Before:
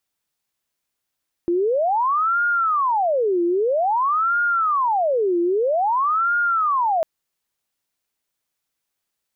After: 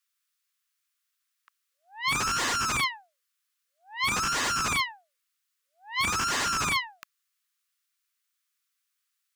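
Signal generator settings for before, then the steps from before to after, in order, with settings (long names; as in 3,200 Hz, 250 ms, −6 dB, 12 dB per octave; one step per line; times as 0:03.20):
siren wail 343–1,420 Hz 0.51 per second sine −16.5 dBFS 5.55 s
Butterworth high-pass 1,100 Hz 72 dB per octave
wave folding −22 dBFS
highs frequency-modulated by the lows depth 0.6 ms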